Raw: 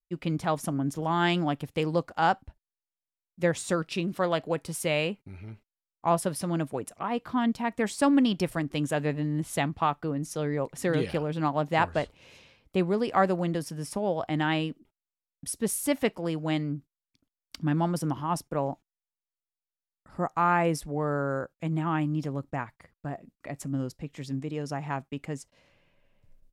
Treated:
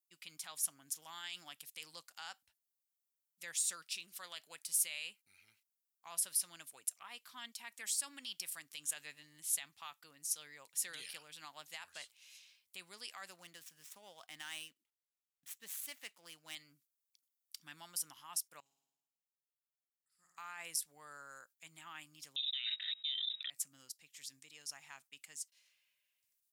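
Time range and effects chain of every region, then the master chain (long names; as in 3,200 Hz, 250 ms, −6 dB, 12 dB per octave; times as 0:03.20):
0:13.30–0:16.55: running median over 9 samples + high-shelf EQ 4,900 Hz −5.5 dB
0:18.60–0:20.38: guitar amp tone stack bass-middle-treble 6-0-2 + flutter between parallel walls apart 9.2 metres, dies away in 1.1 s
0:22.36–0:23.50: voice inversion scrambler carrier 3,800 Hz + envelope flattener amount 100%
whole clip: guitar amp tone stack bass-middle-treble 5-5-5; brickwall limiter −33 dBFS; first difference; level +9.5 dB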